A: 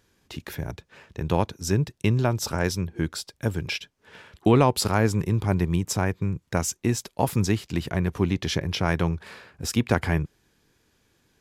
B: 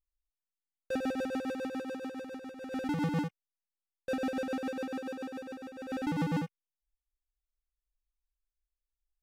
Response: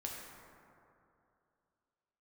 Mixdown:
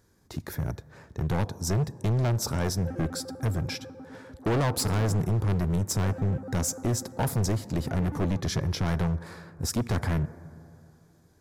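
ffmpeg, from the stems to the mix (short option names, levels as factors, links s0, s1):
-filter_complex "[0:a]equalizer=f=110:t=o:w=1.6:g=3.5,volume=1,asplit=2[s0][s1];[s1]volume=0.133[s2];[1:a]afwtdn=0.00794,adelay=1950,volume=0.562[s3];[2:a]atrim=start_sample=2205[s4];[s2][s4]afir=irnorm=-1:irlink=0[s5];[s0][s3][s5]amix=inputs=3:normalize=0,equalizer=f=2800:w=1.8:g=-14.5,asoftclip=type=hard:threshold=0.075"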